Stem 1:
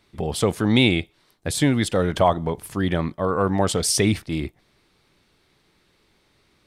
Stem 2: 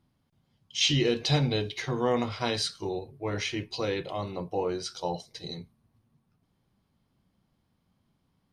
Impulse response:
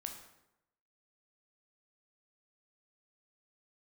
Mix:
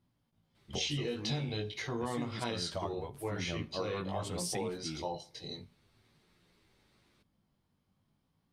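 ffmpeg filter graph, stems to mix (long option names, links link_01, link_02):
-filter_complex "[0:a]asplit=2[link_01][link_02];[link_02]adelay=10.1,afreqshift=-1.3[link_03];[link_01][link_03]amix=inputs=2:normalize=1,adelay=550,volume=-5dB,asplit=2[link_04][link_05];[link_05]volume=-21.5dB[link_06];[1:a]flanger=delay=17:depth=3.7:speed=0.45,volume=-2dB,asplit=3[link_07][link_08][link_09];[link_08]volume=-17dB[link_10];[link_09]apad=whole_len=318691[link_11];[link_04][link_11]sidechaincompress=threshold=-41dB:ratio=8:attack=34:release=1130[link_12];[2:a]atrim=start_sample=2205[link_13];[link_06][link_10]amix=inputs=2:normalize=0[link_14];[link_14][link_13]afir=irnorm=-1:irlink=0[link_15];[link_12][link_07][link_15]amix=inputs=3:normalize=0,acompressor=threshold=-32dB:ratio=6"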